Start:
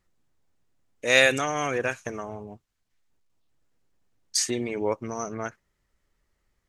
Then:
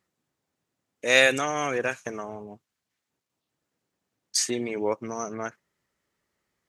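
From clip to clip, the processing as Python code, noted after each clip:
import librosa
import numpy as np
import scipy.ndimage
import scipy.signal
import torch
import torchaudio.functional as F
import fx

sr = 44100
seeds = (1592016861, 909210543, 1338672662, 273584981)

y = scipy.signal.sosfilt(scipy.signal.butter(2, 140.0, 'highpass', fs=sr, output='sos'), x)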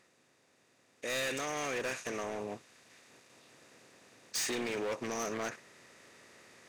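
y = fx.bin_compress(x, sr, power=0.6)
y = fx.rider(y, sr, range_db=5, speed_s=2.0)
y = np.clip(y, -10.0 ** (-22.5 / 20.0), 10.0 ** (-22.5 / 20.0))
y = y * 10.0 ** (-9.0 / 20.0)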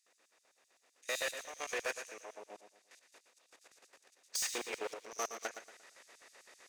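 y = fx.level_steps(x, sr, step_db=12)
y = fx.filter_lfo_highpass(y, sr, shape='square', hz=7.8, low_hz=540.0, high_hz=5500.0, q=0.91)
y = fx.echo_feedback(y, sr, ms=116, feedback_pct=35, wet_db=-9.5)
y = y * 10.0 ** (1.5 / 20.0)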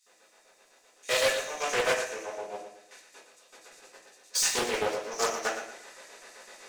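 y = fx.room_shoebox(x, sr, seeds[0], volume_m3=31.0, walls='mixed', distance_m=1.2)
y = fx.doppler_dist(y, sr, depth_ms=0.36)
y = y * 10.0 ** (4.0 / 20.0)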